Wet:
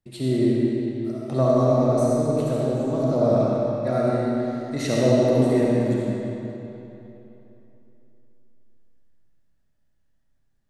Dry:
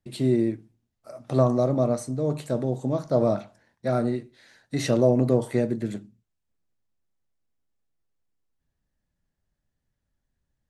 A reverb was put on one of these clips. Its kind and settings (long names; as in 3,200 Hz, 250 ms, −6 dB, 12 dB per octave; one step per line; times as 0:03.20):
comb and all-pass reverb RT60 3.2 s, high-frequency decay 0.8×, pre-delay 25 ms, DRR −5.5 dB
level −2.5 dB